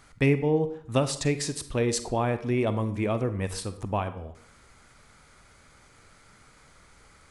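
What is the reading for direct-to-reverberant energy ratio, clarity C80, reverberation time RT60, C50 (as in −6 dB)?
11.0 dB, 15.5 dB, 0.60 s, 12.5 dB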